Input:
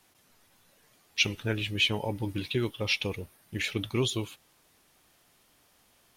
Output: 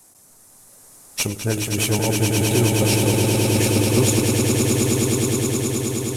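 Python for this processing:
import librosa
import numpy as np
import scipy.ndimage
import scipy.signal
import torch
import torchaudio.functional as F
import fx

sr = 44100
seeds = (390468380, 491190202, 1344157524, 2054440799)

p1 = fx.cvsd(x, sr, bps=64000)
p2 = fx.curve_eq(p1, sr, hz=(770.0, 3200.0, 7700.0), db=(0, -12, 9))
p3 = 10.0 ** (-25.0 / 20.0) * np.tanh(p2 / 10.0 ** (-25.0 / 20.0))
p4 = p2 + (p3 * librosa.db_to_amplitude(-8.0))
p5 = fx.echo_swell(p4, sr, ms=105, loudest=8, wet_db=-5.5)
y = p5 * librosa.db_to_amplitude(5.5)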